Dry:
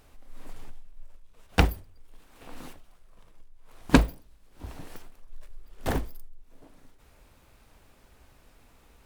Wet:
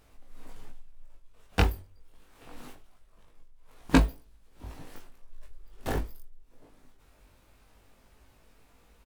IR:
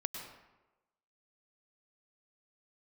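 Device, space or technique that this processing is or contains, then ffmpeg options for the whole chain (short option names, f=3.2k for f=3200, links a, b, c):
double-tracked vocal: -filter_complex "[0:a]asplit=2[a][b];[b]adelay=23,volume=-13.5dB[c];[a][c]amix=inputs=2:normalize=0,flanger=delay=18.5:depth=2.4:speed=0.24"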